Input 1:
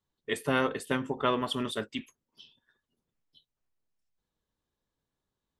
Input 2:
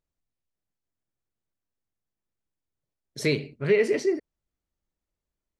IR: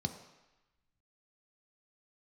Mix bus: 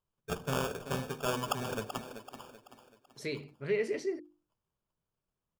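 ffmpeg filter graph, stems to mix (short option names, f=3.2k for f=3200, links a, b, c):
-filter_complex "[0:a]equalizer=f=3.3k:w=3.3:g=9.5,acrusher=samples=22:mix=1:aa=0.000001,volume=-5dB,asplit=4[a][b][c][d];[b]volume=-13dB[e];[c]volume=-12dB[f];[1:a]volume=-9.5dB[g];[d]apad=whole_len=246735[h];[g][h]sidechaincompress=threshold=-43dB:ratio=8:attack=10:release=1430[i];[2:a]atrim=start_sample=2205[j];[e][j]afir=irnorm=-1:irlink=0[k];[f]aecho=0:1:383|766|1149|1532|1915|2298:1|0.41|0.168|0.0689|0.0283|0.0116[l];[a][i][k][l]amix=inputs=4:normalize=0,bandreject=f=50:t=h:w=6,bandreject=f=100:t=h:w=6,bandreject=f=150:t=h:w=6,bandreject=f=200:t=h:w=6,bandreject=f=250:t=h:w=6,bandreject=f=300:t=h:w=6,bandreject=f=350:t=h:w=6"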